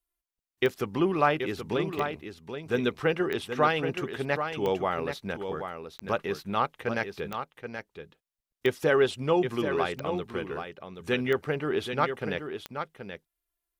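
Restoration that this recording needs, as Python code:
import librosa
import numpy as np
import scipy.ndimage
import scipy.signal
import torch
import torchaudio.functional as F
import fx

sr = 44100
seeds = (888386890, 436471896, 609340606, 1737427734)

y = fx.fix_declick_ar(x, sr, threshold=10.0)
y = fx.fix_echo_inverse(y, sr, delay_ms=778, level_db=-8.0)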